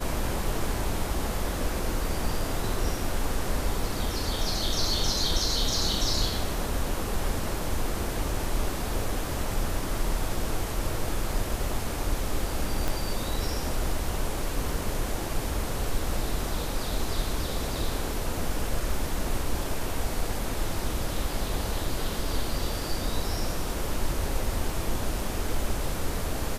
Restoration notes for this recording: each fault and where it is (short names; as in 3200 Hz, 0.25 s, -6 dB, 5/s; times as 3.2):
12.88 pop